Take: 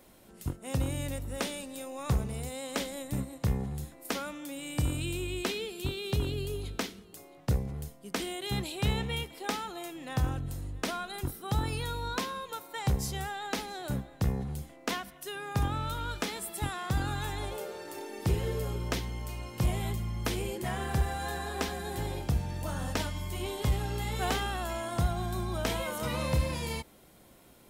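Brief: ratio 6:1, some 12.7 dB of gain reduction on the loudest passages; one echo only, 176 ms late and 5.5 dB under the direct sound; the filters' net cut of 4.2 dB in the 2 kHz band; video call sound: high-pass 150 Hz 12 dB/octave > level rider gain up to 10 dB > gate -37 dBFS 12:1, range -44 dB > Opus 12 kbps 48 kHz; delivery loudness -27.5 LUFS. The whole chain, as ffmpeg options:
-af "equalizer=f=2000:t=o:g=-5.5,acompressor=threshold=0.0141:ratio=6,highpass=150,aecho=1:1:176:0.531,dynaudnorm=m=3.16,agate=range=0.00631:threshold=0.0141:ratio=12,volume=2.51" -ar 48000 -c:a libopus -b:a 12k

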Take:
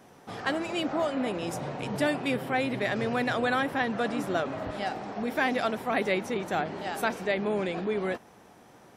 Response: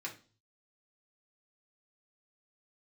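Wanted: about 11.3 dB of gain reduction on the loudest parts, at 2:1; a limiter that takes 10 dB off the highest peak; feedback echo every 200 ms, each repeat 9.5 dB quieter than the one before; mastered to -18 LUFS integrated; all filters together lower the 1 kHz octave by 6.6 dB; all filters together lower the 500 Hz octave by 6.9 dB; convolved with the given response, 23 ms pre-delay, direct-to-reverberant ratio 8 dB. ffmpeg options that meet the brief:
-filter_complex "[0:a]equalizer=f=500:t=o:g=-7,equalizer=f=1000:t=o:g=-6.5,acompressor=threshold=0.00398:ratio=2,alimiter=level_in=4.22:limit=0.0631:level=0:latency=1,volume=0.237,aecho=1:1:200|400|600|800:0.335|0.111|0.0365|0.012,asplit=2[s0][s1];[1:a]atrim=start_sample=2205,adelay=23[s2];[s1][s2]afir=irnorm=-1:irlink=0,volume=0.376[s3];[s0][s3]amix=inputs=2:normalize=0,volume=22.4"

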